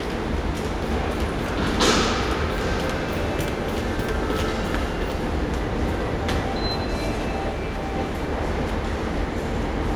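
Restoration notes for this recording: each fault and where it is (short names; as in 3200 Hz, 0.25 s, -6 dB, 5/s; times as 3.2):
7.49–7.95 clipped -24 dBFS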